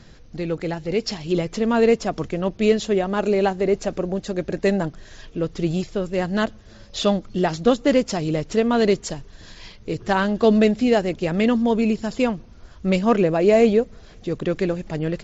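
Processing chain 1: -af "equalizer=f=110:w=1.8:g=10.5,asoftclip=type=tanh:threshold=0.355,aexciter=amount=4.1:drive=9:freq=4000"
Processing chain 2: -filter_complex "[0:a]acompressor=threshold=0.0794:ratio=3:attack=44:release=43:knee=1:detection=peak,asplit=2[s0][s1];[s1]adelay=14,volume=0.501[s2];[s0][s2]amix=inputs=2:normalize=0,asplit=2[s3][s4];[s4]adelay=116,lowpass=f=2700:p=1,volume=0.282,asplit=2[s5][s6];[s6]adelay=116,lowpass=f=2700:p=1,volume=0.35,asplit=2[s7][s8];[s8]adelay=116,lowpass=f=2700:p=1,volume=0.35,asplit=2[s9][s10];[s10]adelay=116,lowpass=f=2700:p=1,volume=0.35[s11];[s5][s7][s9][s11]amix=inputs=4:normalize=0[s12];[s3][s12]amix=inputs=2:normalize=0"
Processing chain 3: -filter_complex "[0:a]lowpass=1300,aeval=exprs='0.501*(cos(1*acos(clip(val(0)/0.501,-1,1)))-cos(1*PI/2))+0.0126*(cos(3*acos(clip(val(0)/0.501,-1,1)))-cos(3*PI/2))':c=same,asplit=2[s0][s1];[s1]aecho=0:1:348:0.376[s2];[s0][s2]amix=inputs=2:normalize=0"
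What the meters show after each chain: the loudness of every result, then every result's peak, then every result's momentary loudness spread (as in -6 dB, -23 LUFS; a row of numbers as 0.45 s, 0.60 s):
-20.5 LUFS, -22.0 LUFS, -22.0 LUFS; -1.5 dBFS, -6.5 dBFS, -4.5 dBFS; 11 LU, 12 LU, 11 LU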